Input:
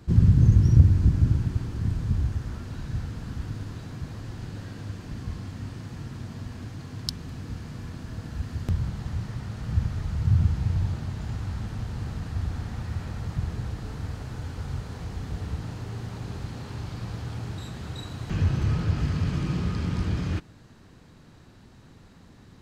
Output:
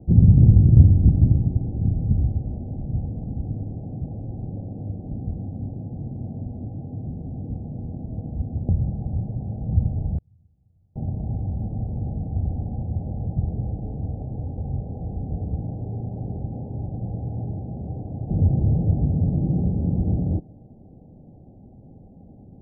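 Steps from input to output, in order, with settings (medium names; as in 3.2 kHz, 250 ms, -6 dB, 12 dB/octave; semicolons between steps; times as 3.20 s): in parallel at -7.5 dB: overload inside the chain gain 12.5 dB; on the sum: rippled Chebyshev low-pass 810 Hz, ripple 3 dB; 10.17–10.96 s: inverted gate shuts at -24 dBFS, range -41 dB; trim +3.5 dB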